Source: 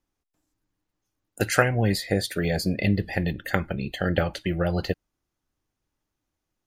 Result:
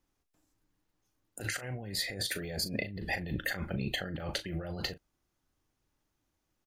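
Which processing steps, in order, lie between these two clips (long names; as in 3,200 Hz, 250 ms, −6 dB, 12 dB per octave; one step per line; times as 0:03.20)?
compressor whose output falls as the input rises −32 dBFS, ratio −1
double-tracking delay 38 ms −12 dB
level −5 dB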